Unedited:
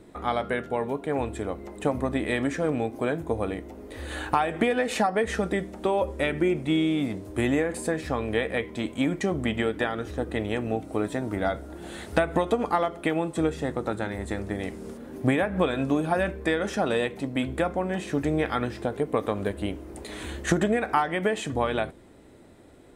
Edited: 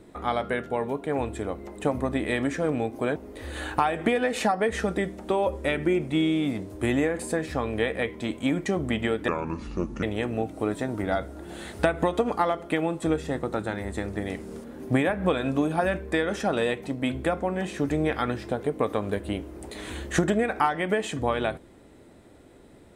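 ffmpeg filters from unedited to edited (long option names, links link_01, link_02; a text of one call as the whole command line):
ffmpeg -i in.wav -filter_complex "[0:a]asplit=4[link_01][link_02][link_03][link_04];[link_01]atrim=end=3.162[link_05];[link_02]atrim=start=3.708:end=9.834[link_06];[link_03]atrim=start=9.83:end=10.36,asetpts=PTS-STARTPTS,asetrate=31311,aresample=44100[link_07];[link_04]atrim=start=10.356[link_08];[link_05][link_06]acrossfade=duration=0.004:curve1=hsin:curve2=hsin[link_09];[link_09][link_07]acrossfade=duration=0.004:curve1=hsin:curve2=hsin[link_10];[link_10][link_08]acrossfade=duration=0.004:curve1=hsin:curve2=hsin" out.wav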